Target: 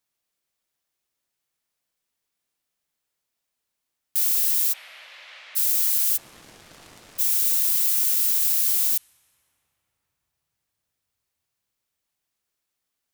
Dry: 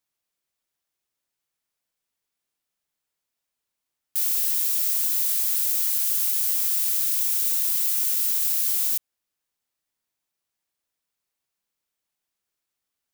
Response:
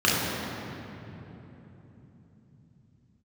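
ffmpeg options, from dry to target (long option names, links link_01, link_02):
-filter_complex "[0:a]asplit=3[link_01][link_02][link_03];[link_01]afade=type=out:start_time=4.72:duration=0.02[link_04];[link_02]highpass=370,equalizer=frequency=390:width_type=q:width=4:gain=-9,equalizer=frequency=590:width_type=q:width=4:gain=8,equalizer=frequency=2100:width_type=q:width=4:gain=3,lowpass=frequency=2900:width=0.5412,lowpass=frequency=2900:width=1.3066,afade=type=in:start_time=4.72:duration=0.02,afade=type=out:start_time=5.55:duration=0.02[link_05];[link_03]afade=type=in:start_time=5.55:duration=0.02[link_06];[link_04][link_05][link_06]amix=inputs=3:normalize=0,asplit=3[link_07][link_08][link_09];[link_07]afade=type=out:start_time=6.16:duration=0.02[link_10];[link_08]adynamicsmooth=sensitivity=3:basefreq=960,afade=type=in:start_time=6.16:duration=0.02,afade=type=out:start_time=7.18:duration=0.02[link_11];[link_09]afade=type=in:start_time=7.18:duration=0.02[link_12];[link_10][link_11][link_12]amix=inputs=3:normalize=0,asplit=2[link_13][link_14];[1:a]atrim=start_sample=2205,asetrate=26019,aresample=44100[link_15];[link_14][link_15]afir=irnorm=-1:irlink=0,volume=-41.5dB[link_16];[link_13][link_16]amix=inputs=2:normalize=0,volume=2dB"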